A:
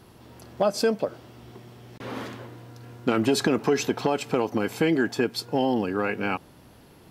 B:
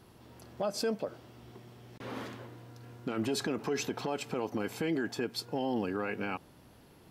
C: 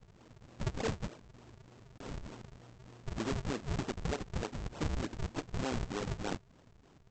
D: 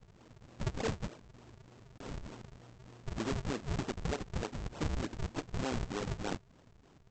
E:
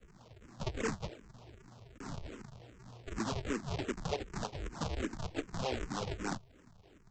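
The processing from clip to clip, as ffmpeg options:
ffmpeg -i in.wav -af "alimiter=limit=-17.5dB:level=0:latency=1:release=44,volume=-6dB" out.wav
ffmpeg -i in.wav -af "lowshelf=frequency=460:gain=-5.5,aresample=16000,acrusher=samples=35:mix=1:aa=0.000001:lfo=1:lforange=56:lforate=3.3,aresample=44100" out.wav
ffmpeg -i in.wav -af anull out.wav
ffmpeg -i in.wav -filter_complex "[0:a]acrossover=split=270[link_01][link_02];[link_01]asoftclip=type=tanh:threshold=-37.5dB[link_03];[link_03][link_02]amix=inputs=2:normalize=0,asplit=2[link_04][link_05];[link_05]afreqshift=-2.6[link_06];[link_04][link_06]amix=inputs=2:normalize=1,volume=4dB" out.wav

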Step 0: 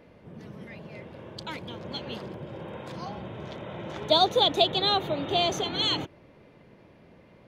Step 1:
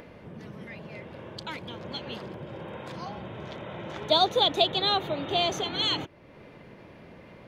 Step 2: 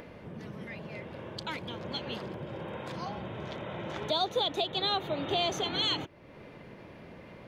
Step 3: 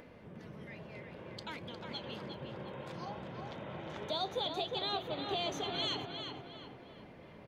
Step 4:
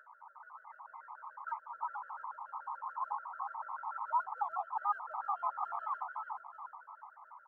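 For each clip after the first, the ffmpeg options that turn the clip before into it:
ffmpeg -i in.wav -filter_complex "[0:a]equalizer=frequency=1800:width=0.6:gain=3,asplit=2[link_01][link_02];[link_02]acompressor=mode=upward:threshold=-30dB:ratio=2.5,volume=-1.5dB[link_03];[link_01][link_03]amix=inputs=2:normalize=0,volume=-7.5dB" out.wav
ffmpeg -i in.wav -af "alimiter=limit=-19.5dB:level=0:latency=1:release=364" out.wav
ffmpeg -i in.wav -filter_complex "[0:a]flanger=delay=3.9:depth=3.9:regen=85:speed=0.59:shape=sinusoidal,asplit=2[link_01][link_02];[link_02]adelay=357,lowpass=frequency=2900:poles=1,volume=-4.5dB,asplit=2[link_03][link_04];[link_04]adelay=357,lowpass=frequency=2900:poles=1,volume=0.49,asplit=2[link_05][link_06];[link_06]adelay=357,lowpass=frequency=2900:poles=1,volume=0.49,asplit=2[link_07][link_08];[link_08]adelay=357,lowpass=frequency=2900:poles=1,volume=0.49,asplit=2[link_09][link_10];[link_10]adelay=357,lowpass=frequency=2900:poles=1,volume=0.49,asplit=2[link_11][link_12];[link_12]adelay=357,lowpass=frequency=2900:poles=1,volume=0.49[link_13];[link_01][link_03][link_05][link_07][link_09][link_11][link_13]amix=inputs=7:normalize=0,volume=-2.5dB" out.wav
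ffmpeg -i in.wav -af "asuperpass=centerf=1100:order=8:qfactor=1.9,aphaser=in_gain=1:out_gain=1:delay=2.1:decay=0.21:speed=1.1:type=triangular,afftfilt=real='re*gt(sin(2*PI*6.9*pts/sr)*(1-2*mod(floor(b*sr/1024/650),2)),0)':imag='im*gt(sin(2*PI*6.9*pts/sr)*(1-2*mod(floor(b*sr/1024/650),2)),0)':win_size=1024:overlap=0.75,volume=15dB" out.wav

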